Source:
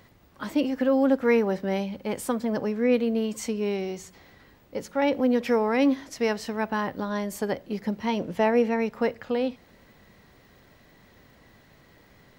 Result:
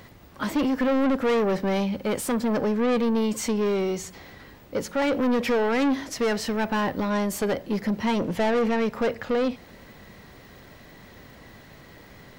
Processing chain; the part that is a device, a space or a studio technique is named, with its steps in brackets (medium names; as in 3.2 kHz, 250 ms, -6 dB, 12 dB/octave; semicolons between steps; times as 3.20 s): saturation between pre-emphasis and de-emphasis (treble shelf 5.6 kHz +11 dB; saturation -27.5 dBFS, distortion -6 dB; treble shelf 5.6 kHz -11 dB); trim +8 dB